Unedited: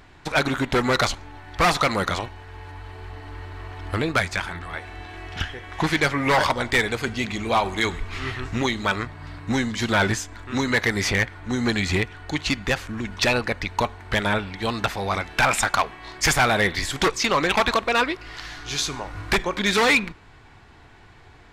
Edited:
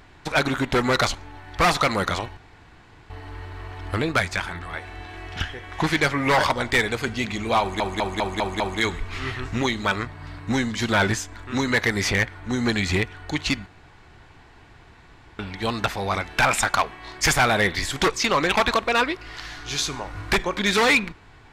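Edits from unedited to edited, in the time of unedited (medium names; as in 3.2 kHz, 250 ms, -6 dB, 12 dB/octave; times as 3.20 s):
2.37–3.10 s: room tone
7.60 s: stutter 0.20 s, 6 plays
12.66–14.39 s: room tone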